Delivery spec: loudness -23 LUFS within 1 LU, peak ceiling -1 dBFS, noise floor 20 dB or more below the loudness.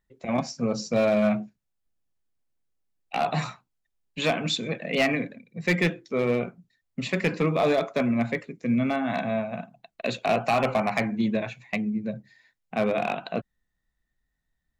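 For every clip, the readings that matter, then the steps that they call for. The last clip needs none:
clipped 0.5%; flat tops at -16.0 dBFS; loudness -26.5 LUFS; peak -16.0 dBFS; loudness target -23.0 LUFS
-> clip repair -16 dBFS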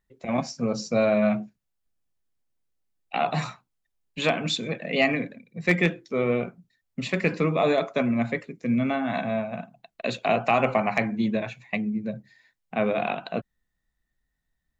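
clipped 0.0%; loudness -26.0 LUFS; peak -7.0 dBFS; loudness target -23.0 LUFS
-> gain +3 dB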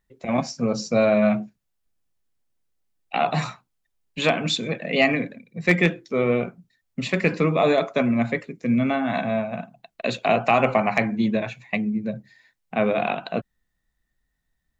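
loudness -23.0 LUFS; peak -4.0 dBFS; noise floor -77 dBFS

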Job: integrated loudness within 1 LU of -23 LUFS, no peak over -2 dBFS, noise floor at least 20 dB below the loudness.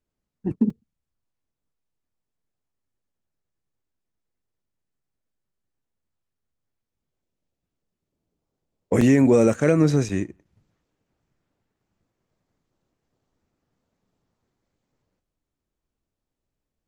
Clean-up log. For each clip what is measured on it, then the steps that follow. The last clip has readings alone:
dropouts 4; longest dropout 3.6 ms; loudness -20.0 LUFS; peak -6.0 dBFS; loudness target -23.0 LUFS
-> interpolate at 0.7/9.01/9.54/10.09, 3.6 ms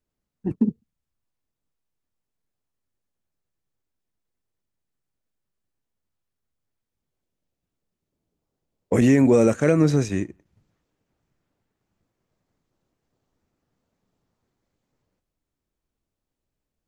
dropouts 0; loudness -20.0 LUFS; peak -6.0 dBFS; loudness target -23.0 LUFS
-> gain -3 dB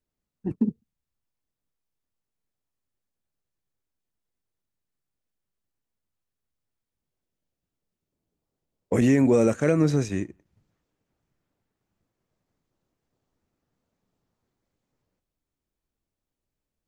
loudness -23.0 LUFS; peak -9.0 dBFS; noise floor -87 dBFS

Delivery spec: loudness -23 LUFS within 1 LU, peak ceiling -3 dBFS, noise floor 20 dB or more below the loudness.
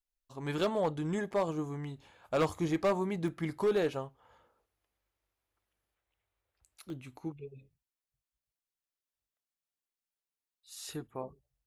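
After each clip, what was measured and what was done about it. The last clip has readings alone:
clipped 0.6%; flat tops at -23.0 dBFS; dropouts 2; longest dropout 1.4 ms; loudness -34.0 LUFS; peak -23.0 dBFS; loudness target -23.0 LUFS
-> clip repair -23 dBFS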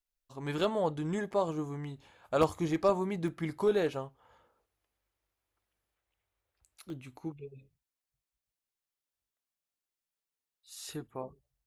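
clipped 0.0%; dropouts 2; longest dropout 1.4 ms
-> interpolate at 3.28/6.9, 1.4 ms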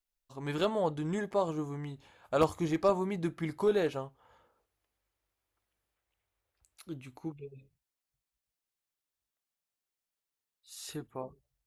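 dropouts 0; loudness -33.0 LUFS; peak -14.0 dBFS; loudness target -23.0 LUFS
-> gain +10 dB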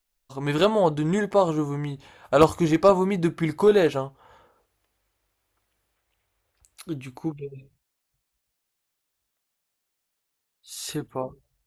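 loudness -23.0 LUFS; peak -4.0 dBFS; noise floor -80 dBFS

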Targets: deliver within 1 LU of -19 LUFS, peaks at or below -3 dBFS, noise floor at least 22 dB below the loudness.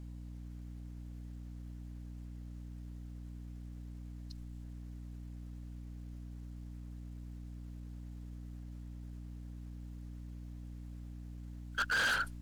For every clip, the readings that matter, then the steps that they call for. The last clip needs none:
clipped 0.5%; flat tops at -28.5 dBFS; hum 60 Hz; harmonics up to 300 Hz; hum level -44 dBFS; loudness -43.5 LUFS; peak -28.5 dBFS; loudness target -19.0 LUFS
-> clip repair -28.5 dBFS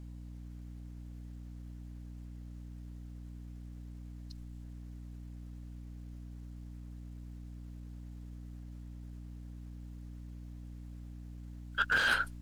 clipped 0.0%; hum 60 Hz; harmonics up to 300 Hz; hum level -44 dBFS
-> notches 60/120/180/240/300 Hz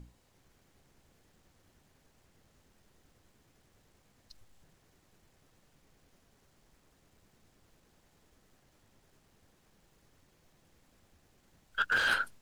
hum none; loudness -30.0 LUFS; peak -19.0 dBFS; loudness target -19.0 LUFS
-> gain +11 dB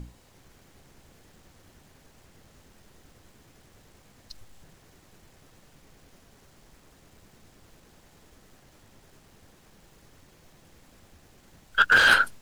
loudness -19.0 LUFS; peak -8.0 dBFS; noise floor -58 dBFS

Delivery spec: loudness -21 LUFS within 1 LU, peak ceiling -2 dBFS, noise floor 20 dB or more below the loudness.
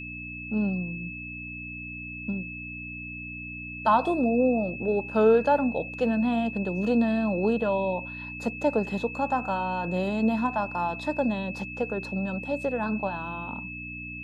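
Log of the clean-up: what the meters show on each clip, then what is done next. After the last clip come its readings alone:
hum 60 Hz; harmonics up to 300 Hz; hum level -40 dBFS; steady tone 2600 Hz; tone level -37 dBFS; loudness -27.5 LUFS; peak -10.0 dBFS; loudness target -21.0 LUFS
-> de-hum 60 Hz, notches 5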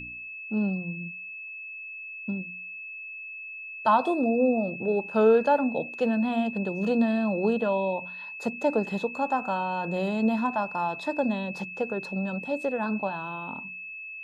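hum none; steady tone 2600 Hz; tone level -37 dBFS
-> notch 2600 Hz, Q 30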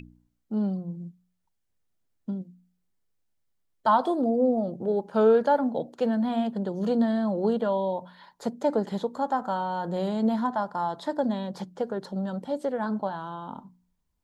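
steady tone none; loudness -27.5 LUFS; peak -11.0 dBFS; loudness target -21.0 LUFS
-> gain +6.5 dB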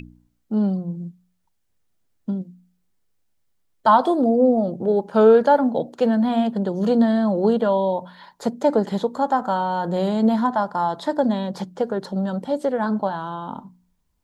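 loudness -21.0 LUFS; peak -4.5 dBFS; noise floor -69 dBFS

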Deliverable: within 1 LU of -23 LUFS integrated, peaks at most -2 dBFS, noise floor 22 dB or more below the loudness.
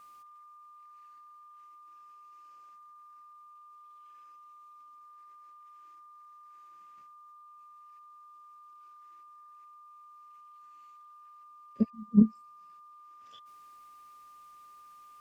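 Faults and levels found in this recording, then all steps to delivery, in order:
steady tone 1200 Hz; tone level -51 dBFS; loudness -27.0 LUFS; peak -10.0 dBFS; loudness target -23.0 LUFS
-> notch 1200 Hz, Q 30; gain +4 dB

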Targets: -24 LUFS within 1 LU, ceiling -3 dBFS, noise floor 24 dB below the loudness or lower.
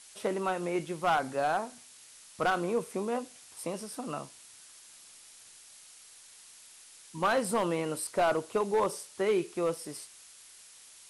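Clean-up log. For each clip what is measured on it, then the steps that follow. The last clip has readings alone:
clipped 0.6%; flat tops at -21.0 dBFS; noise floor -54 dBFS; noise floor target -56 dBFS; loudness -31.5 LUFS; peak -21.0 dBFS; loudness target -24.0 LUFS
-> clip repair -21 dBFS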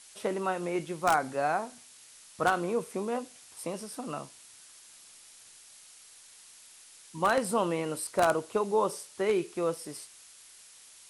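clipped 0.0%; noise floor -54 dBFS; noise floor target -55 dBFS
-> denoiser 6 dB, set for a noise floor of -54 dBFS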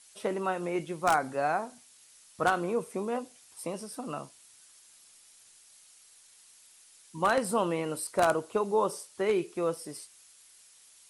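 noise floor -58 dBFS; loudness -30.5 LUFS; peak -12.0 dBFS; loudness target -24.0 LUFS
-> gain +6.5 dB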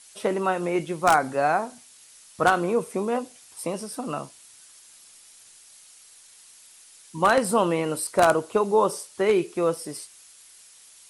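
loudness -24.0 LUFS; peak -5.5 dBFS; noise floor -52 dBFS

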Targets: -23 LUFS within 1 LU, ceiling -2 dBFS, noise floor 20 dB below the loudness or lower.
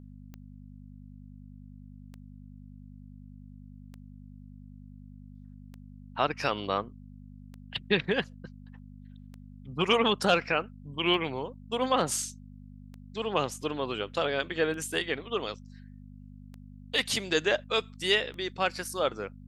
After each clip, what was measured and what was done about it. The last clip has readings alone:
clicks 11; hum 50 Hz; harmonics up to 250 Hz; hum level -45 dBFS; loudness -29.5 LUFS; peak -10.0 dBFS; loudness target -23.0 LUFS
-> de-click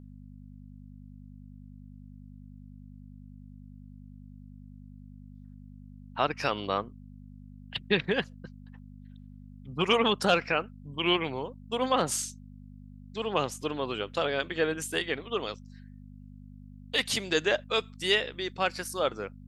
clicks 0; hum 50 Hz; harmonics up to 250 Hz; hum level -45 dBFS
-> de-hum 50 Hz, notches 5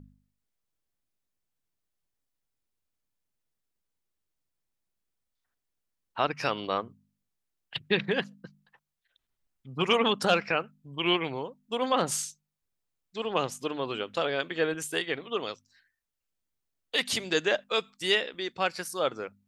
hum none; loudness -29.5 LUFS; peak -10.5 dBFS; loudness target -23.0 LUFS
-> gain +6.5 dB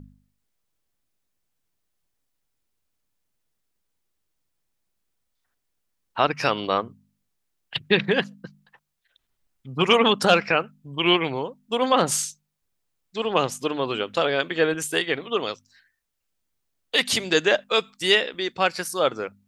loudness -23.0 LUFS; peak -4.0 dBFS; noise floor -77 dBFS

